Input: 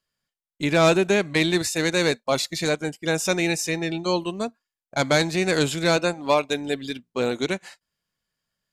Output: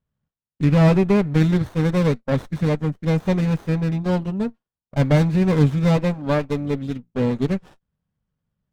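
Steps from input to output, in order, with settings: tone controls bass +14 dB, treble -14 dB; notch comb 340 Hz; running maximum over 17 samples

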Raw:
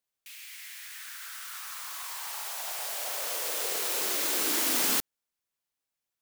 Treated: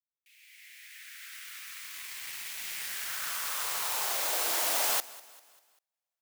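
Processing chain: opening faded in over 1.36 s; high-pass sweep 2100 Hz -> 670 Hz, 2.7–4.32; in parallel at -7 dB: bit-crush 5-bit; on the sum: feedback echo 0.197 s, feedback 47%, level -20 dB; gain -5.5 dB

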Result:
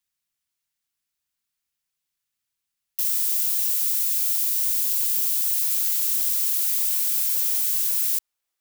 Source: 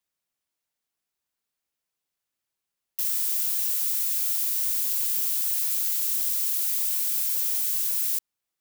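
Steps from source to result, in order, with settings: bell 500 Hz -11.5 dB 2.2 oct, from 5.71 s 160 Hz; gain +3 dB

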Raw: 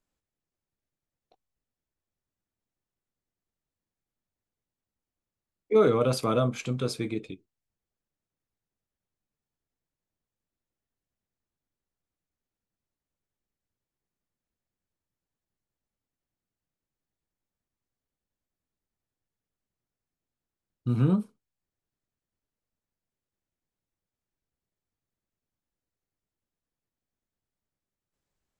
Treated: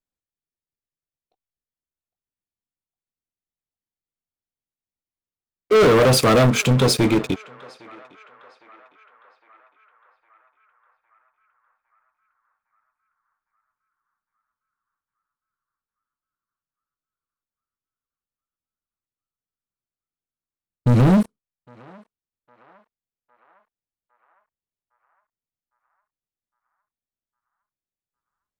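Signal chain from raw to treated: sample leveller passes 5; narrowing echo 0.808 s, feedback 63%, band-pass 1300 Hz, level -20 dB

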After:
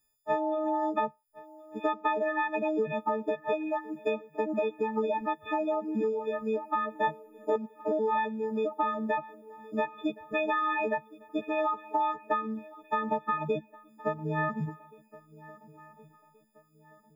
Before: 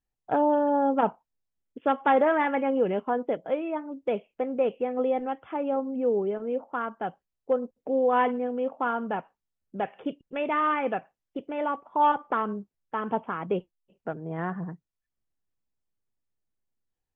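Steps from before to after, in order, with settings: frequency quantiser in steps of 6 st; reverb removal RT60 0.92 s; compressor 10:1, threshold -30 dBFS, peak gain reduction 15.5 dB; 6.93–7.56 doubler 25 ms -4 dB; swung echo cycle 1.426 s, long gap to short 3:1, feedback 36%, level -20.5 dB; gain +4.5 dB

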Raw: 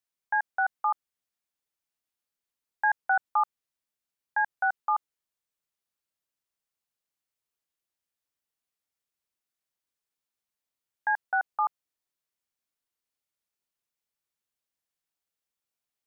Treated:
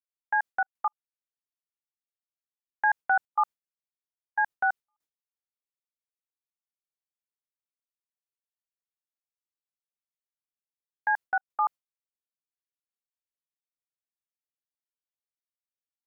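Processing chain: gate with hold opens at -22 dBFS; step gate ".xxxx.x..xxxx" 120 bpm -60 dB; gain +1 dB

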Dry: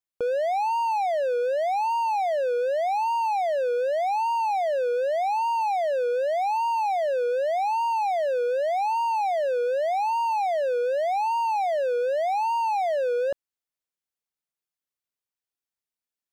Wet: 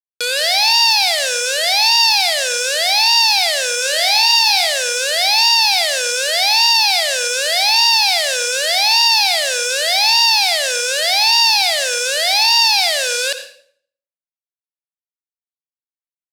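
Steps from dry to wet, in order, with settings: tracing distortion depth 0.031 ms; vocal rider 0.5 s; companded quantiser 2-bit; band-pass 4900 Hz, Q 4; 3.78–4.67 flutter echo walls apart 5.3 m, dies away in 0.2 s; reverb RT60 0.60 s, pre-delay 62 ms, DRR 10 dB; maximiser +32 dB; gain -1 dB

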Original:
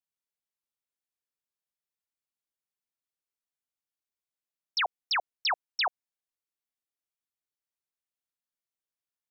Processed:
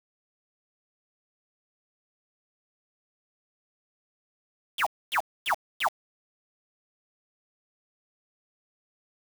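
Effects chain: sine-wave speech; requantised 6-bit, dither none

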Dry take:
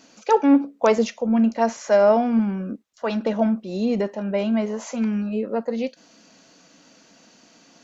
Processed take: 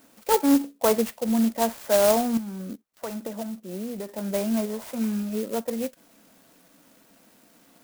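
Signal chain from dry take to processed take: 2.37–4.09 compressor 6:1, threshold -27 dBFS, peak gain reduction 11.5 dB; clock jitter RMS 0.081 ms; gain -3.5 dB

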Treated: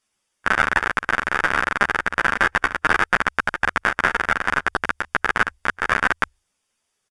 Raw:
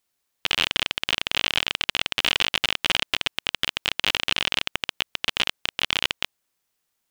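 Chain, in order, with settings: notches 50/100/150 Hz; harmonic-percussive split percussive +7 dB; pitch shift -11.5 st; Butterworth band-stop 4100 Hz, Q 8; ensemble effect; gain +2 dB

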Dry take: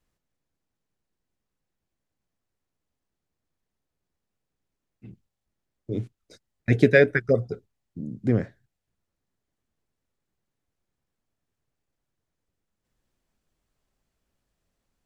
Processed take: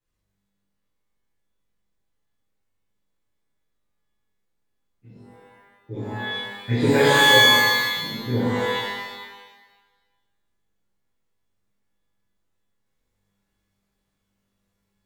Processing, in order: shimmer reverb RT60 1.2 s, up +12 st, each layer -2 dB, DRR -10.5 dB; gain -12 dB

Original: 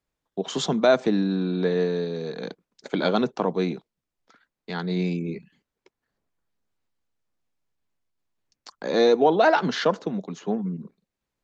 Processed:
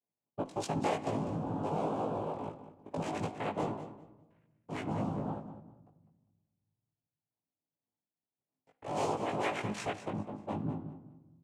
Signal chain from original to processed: Wiener smoothing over 41 samples; LPF 4000 Hz; low shelf 220 Hz -10.5 dB; limiter -18 dBFS, peak gain reduction 10 dB; compressor 2.5:1, threshold -32 dBFS, peak gain reduction 7 dB; rotary speaker horn 0.8 Hz, later 6.7 Hz, at 7.57; noise vocoder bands 4; doubler 19 ms -2.5 dB; feedback echo 0.2 s, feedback 25%, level -12 dB; reverb RT60 1.3 s, pre-delay 7 ms, DRR 13 dB; mismatched tape noise reduction decoder only; gain -1 dB

